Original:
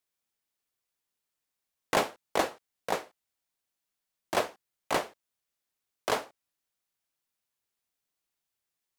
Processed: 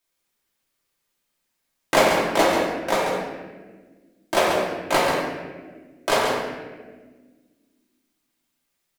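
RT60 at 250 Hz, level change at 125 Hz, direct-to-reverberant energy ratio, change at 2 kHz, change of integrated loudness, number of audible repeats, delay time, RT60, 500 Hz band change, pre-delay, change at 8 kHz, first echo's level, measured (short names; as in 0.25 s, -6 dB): 2.5 s, +12.5 dB, -5.5 dB, +11.5 dB, +10.0 dB, 1, 0.137 s, 1.4 s, +12.0 dB, 3 ms, +9.5 dB, -6.0 dB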